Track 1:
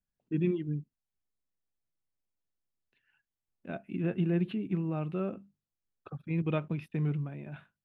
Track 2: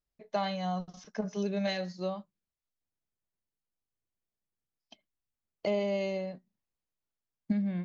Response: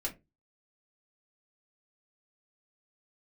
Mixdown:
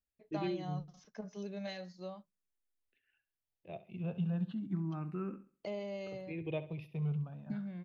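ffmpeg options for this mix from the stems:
-filter_complex "[0:a]asplit=2[link_01][link_02];[link_02]afreqshift=0.33[link_03];[link_01][link_03]amix=inputs=2:normalize=1,volume=-4dB,asplit=2[link_04][link_05];[link_05]volume=-14.5dB[link_06];[1:a]volume=-10.5dB[link_07];[link_06]aecho=0:1:67|134|201|268|335:1|0.33|0.109|0.0359|0.0119[link_08];[link_04][link_07][link_08]amix=inputs=3:normalize=0"

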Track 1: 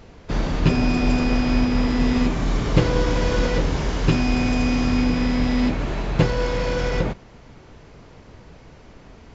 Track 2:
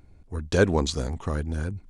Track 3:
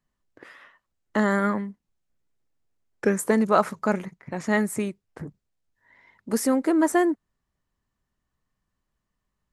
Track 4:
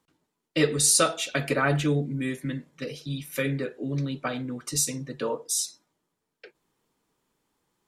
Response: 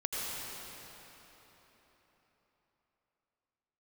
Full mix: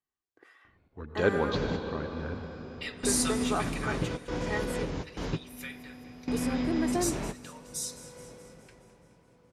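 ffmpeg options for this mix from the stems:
-filter_complex "[0:a]lowshelf=frequency=430:gain=7.5,acompressor=threshold=-18dB:ratio=6,adelay=1250,volume=-5.5dB,asplit=2[link_01][link_02];[link_02]volume=-22.5dB[link_03];[1:a]lowpass=frequency=3900:width=0.5412,lowpass=frequency=3900:width=1.3066,adelay=650,volume=-8dB,asplit=2[link_04][link_05];[link_05]volume=-5.5dB[link_06];[2:a]aecho=1:1:2.6:0.58,volume=-12dB,asplit=2[link_07][link_08];[3:a]highpass=1400,adelay=2250,volume=-9dB,asplit=3[link_09][link_10][link_11];[link_10]volume=-22dB[link_12];[link_11]volume=-15.5dB[link_13];[link_08]apad=whole_len=467402[link_14];[link_01][link_14]sidechaingate=range=-33dB:threshold=-57dB:ratio=16:detection=peak[link_15];[4:a]atrim=start_sample=2205[link_16];[link_03][link_06][link_12]amix=inputs=3:normalize=0[link_17];[link_17][link_16]afir=irnorm=-1:irlink=0[link_18];[link_13]aecho=0:1:211|422|633|844|1055|1266|1477|1688|1899:1|0.57|0.325|0.185|0.106|0.0602|0.0343|0.0195|0.0111[link_19];[link_15][link_04][link_07][link_09][link_18][link_19]amix=inputs=6:normalize=0,highpass=frequency=200:poles=1"

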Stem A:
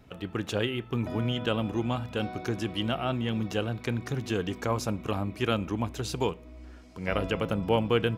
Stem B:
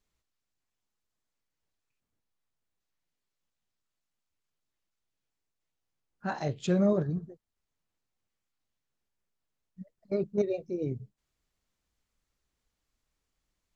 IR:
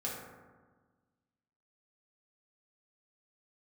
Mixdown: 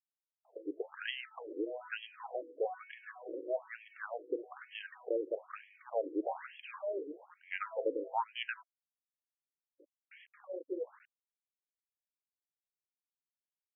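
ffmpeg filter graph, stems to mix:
-filter_complex "[0:a]highshelf=frequency=2000:gain=-7.5,adelay=450,volume=0.5dB[link_01];[1:a]alimiter=level_in=1dB:limit=-24dB:level=0:latency=1:release=92,volume=-1dB,flanger=delay=16:depth=3.5:speed=0.25,aeval=exprs='val(0)*gte(abs(val(0)),0.00531)':channel_layout=same,volume=2.5dB[link_02];[link_01][link_02]amix=inputs=2:normalize=0,highpass=220,afftfilt=real='re*between(b*sr/1024,370*pow(2400/370,0.5+0.5*sin(2*PI*1.1*pts/sr))/1.41,370*pow(2400/370,0.5+0.5*sin(2*PI*1.1*pts/sr))*1.41)':imag='im*between(b*sr/1024,370*pow(2400/370,0.5+0.5*sin(2*PI*1.1*pts/sr))/1.41,370*pow(2400/370,0.5+0.5*sin(2*PI*1.1*pts/sr))*1.41)':win_size=1024:overlap=0.75"

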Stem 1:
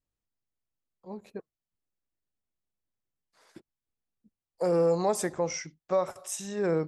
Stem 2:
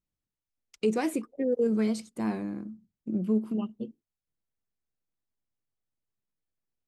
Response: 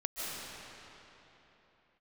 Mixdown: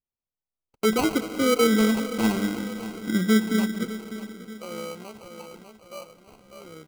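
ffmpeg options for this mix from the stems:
-filter_complex "[0:a]equalizer=frequency=89:width_type=o:width=1.9:gain=-6.5,aphaser=in_gain=1:out_gain=1:delay=1.9:decay=0.52:speed=0.42:type=sinusoidal,tremolo=f=67:d=0.462,volume=-15dB,asplit=2[link_01][link_02];[link_02]volume=-7.5dB[link_03];[1:a]agate=range=-13dB:threshold=-49dB:ratio=16:detection=peak,dynaudnorm=framelen=120:gausssize=13:maxgain=6dB,volume=-1.5dB,asplit=3[link_04][link_05][link_06];[link_05]volume=-12.5dB[link_07];[link_06]volume=-12.5dB[link_08];[2:a]atrim=start_sample=2205[link_09];[link_07][link_09]afir=irnorm=-1:irlink=0[link_10];[link_03][link_08]amix=inputs=2:normalize=0,aecho=0:1:598|1196|1794|2392|2990|3588:1|0.46|0.212|0.0973|0.0448|0.0206[link_11];[link_01][link_04][link_10][link_11]amix=inputs=4:normalize=0,acrusher=samples=25:mix=1:aa=0.000001"

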